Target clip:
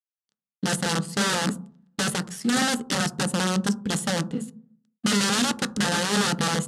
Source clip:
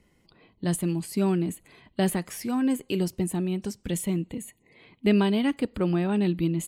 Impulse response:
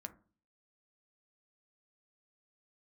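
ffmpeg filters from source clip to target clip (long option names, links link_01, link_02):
-filter_complex "[0:a]adynamicequalizer=threshold=0.01:dfrequency=420:dqfactor=3.6:tfrequency=420:tqfactor=3.6:attack=5:release=100:ratio=0.375:range=2.5:mode=boostabove:tftype=bell,aeval=exprs='sgn(val(0))*max(abs(val(0))-0.00631,0)':channel_layout=same,aeval=exprs='0.398*(cos(1*acos(clip(val(0)/0.398,-1,1)))-cos(1*PI/2))+0.0126*(cos(6*acos(clip(val(0)/0.398,-1,1)))-cos(6*PI/2))':channel_layout=same,aeval=exprs='(mod(13.3*val(0)+1,2)-1)/13.3':channel_layout=same,highpass=140,equalizer=frequency=200:width_type=q:width=4:gain=9,equalizer=frequency=340:width_type=q:width=4:gain=-6,equalizer=frequency=680:width_type=q:width=4:gain=-9,equalizer=frequency=1000:width_type=q:width=4:gain=-9,equalizer=frequency=2300:width_type=q:width=4:gain=-9,lowpass=frequency=9800:width=0.5412,lowpass=frequency=9800:width=1.3066,asplit=2[link_01][link_02];[1:a]atrim=start_sample=2205,asetrate=31311,aresample=44100[link_03];[link_02][link_03]afir=irnorm=-1:irlink=0,volume=4dB[link_04];[link_01][link_04]amix=inputs=2:normalize=0"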